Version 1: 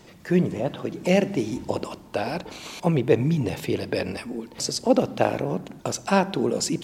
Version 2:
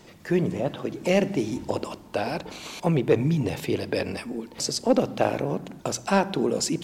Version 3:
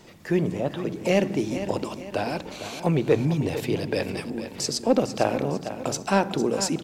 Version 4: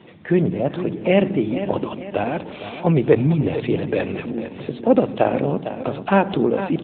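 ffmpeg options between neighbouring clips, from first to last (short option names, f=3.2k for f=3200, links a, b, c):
-af "bandreject=f=60:t=h:w=6,bandreject=f=120:t=h:w=6,bandreject=f=180:t=h:w=6,acontrast=46,volume=-6dB"
-af "aecho=1:1:454|908|1362|1816:0.282|0.118|0.0497|0.0209"
-af "volume=5.5dB" -ar 8000 -c:a libopencore_amrnb -b:a 10200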